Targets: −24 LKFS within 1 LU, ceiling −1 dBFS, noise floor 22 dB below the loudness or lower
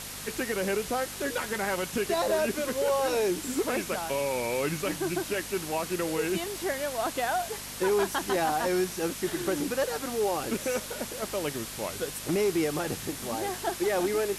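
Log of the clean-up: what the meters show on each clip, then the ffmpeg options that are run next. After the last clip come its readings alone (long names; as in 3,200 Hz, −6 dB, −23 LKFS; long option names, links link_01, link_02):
mains hum 50 Hz; hum harmonics up to 250 Hz; level of the hum −48 dBFS; background noise floor −40 dBFS; target noise floor −52 dBFS; integrated loudness −29.5 LKFS; sample peak −17.0 dBFS; target loudness −24.0 LKFS
→ -af "bandreject=frequency=50:width_type=h:width=4,bandreject=frequency=100:width_type=h:width=4,bandreject=frequency=150:width_type=h:width=4,bandreject=frequency=200:width_type=h:width=4,bandreject=frequency=250:width_type=h:width=4"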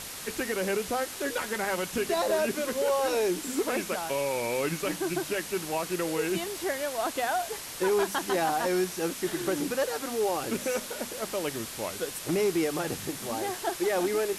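mains hum none found; background noise floor −40 dBFS; target noise floor −52 dBFS
→ -af "afftdn=noise_reduction=12:noise_floor=-40"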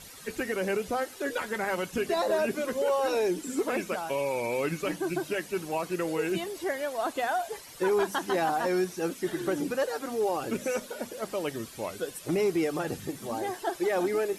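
background noise floor −47 dBFS; target noise floor −52 dBFS
→ -af "afftdn=noise_reduction=6:noise_floor=-47"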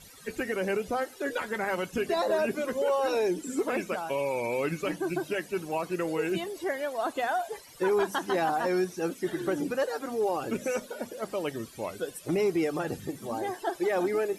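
background noise floor −50 dBFS; target noise floor −53 dBFS
→ -af "afftdn=noise_reduction=6:noise_floor=-50"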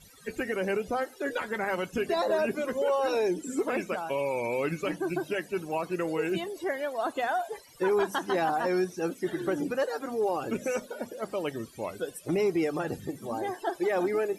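background noise floor −53 dBFS; integrated loudness −30.5 LKFS; sample peak −18.0 dBFS; target loudness −24.0 LKFS
→ -af "volume=6.5dB"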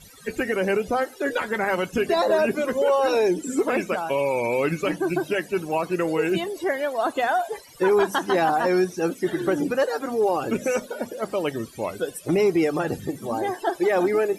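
integrated loudness −24.0 LKFS; sample peak −11.5 dBFS; background noise floor −46 dBFS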